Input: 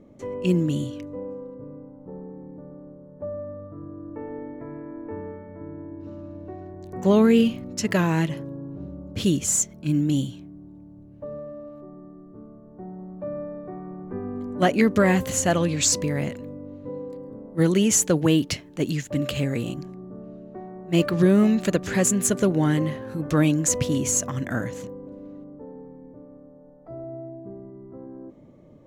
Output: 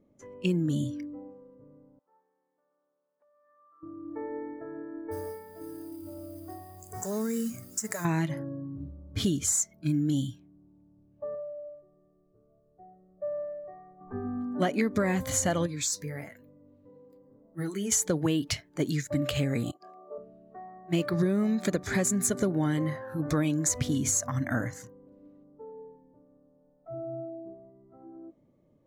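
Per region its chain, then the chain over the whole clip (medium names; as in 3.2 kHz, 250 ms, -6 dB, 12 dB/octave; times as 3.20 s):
1.99–3.83 s: high-pass 1.4 kHz + compression, threshold -50 dBFS
5.11–8.05 s: resonant high shelf 5.7 kHz +11 dB, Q 3 + compression 5:1, threshold -28 dBFS + modulation noise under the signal 17 dB
11.35–14.01 s: peaking EQ 1.5 kHz -7.5 dB 0.59 oct + static phaser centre 930 Hz, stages 6
15.66–17.92 s: treble shelf 11 kHz +9.5 dB + flange 1.1 Hz, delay 5.6 ms, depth 6.8 ms, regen -49% + compression 1.5:1, threshold -37 dBFS
19.71–20.18 s: compressor with a negative ratio -38 dBFS, ratio -0.5 + resonant high-pass 510 Hz, resonance Q 2.6
whole clip: spectral noise reduction 15 dB; compression 4:1, threshold -24 dBFS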